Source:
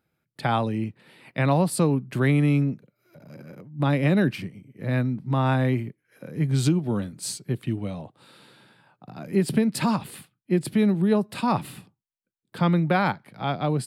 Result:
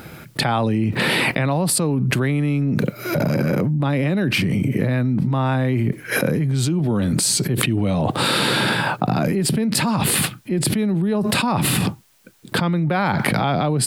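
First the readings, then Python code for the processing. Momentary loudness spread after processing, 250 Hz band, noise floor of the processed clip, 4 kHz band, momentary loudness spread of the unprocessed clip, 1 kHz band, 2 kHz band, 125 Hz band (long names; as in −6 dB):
4 LU, +4.0 dB, −42 dBFS, +14.5 dB, 15 LU, +5.0 dB, +10.0 dB, +5.0 dB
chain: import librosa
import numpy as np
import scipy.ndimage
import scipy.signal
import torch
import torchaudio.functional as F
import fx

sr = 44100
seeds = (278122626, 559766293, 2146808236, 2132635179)

y = fx.env_flatten(x, sr, amount_pct=100)
y = F.gain(torch.from_numpy(y), -2.5).numpy()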